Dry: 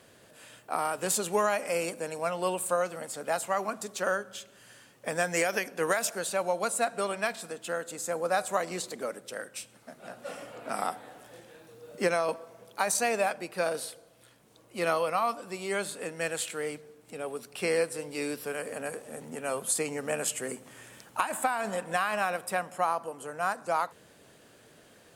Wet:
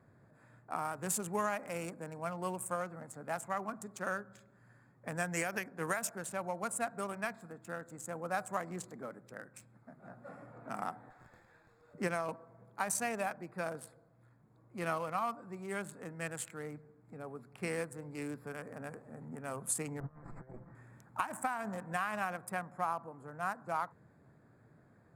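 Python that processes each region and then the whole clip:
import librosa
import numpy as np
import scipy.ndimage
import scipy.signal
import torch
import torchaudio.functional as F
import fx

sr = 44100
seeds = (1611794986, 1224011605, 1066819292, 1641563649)

y = fx.chain(x, sr, fx.weighting(curve='ITU-R 468'),
    fx.running_max(window=3), at=(11.1, 11.94))
y = fx.chain(y, sr, fx.lower_of_two(delay_ms=5.9),
    fx.moving_average(points=14),
    fx.over_compress(threshold_db=-43.0, ratio=-0.5), at=(20.0, 20.75))
y = fx.wiener(y, sr, points=15)
y = fx.graphic_eq(y, sr, hz=(125, 500, 4000), db=(8, -8, -9))
y = y * 10.0 ** (-4.0 / 20.0)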